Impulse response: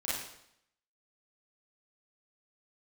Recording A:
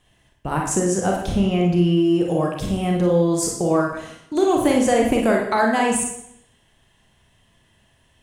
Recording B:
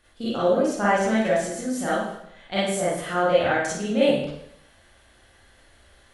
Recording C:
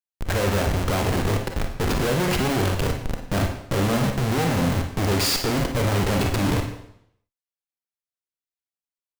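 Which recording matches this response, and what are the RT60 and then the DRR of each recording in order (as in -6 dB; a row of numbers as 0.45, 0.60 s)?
B; 0.75, 0.75, 0.75 s; -0.5, -9.5, 3.5 dB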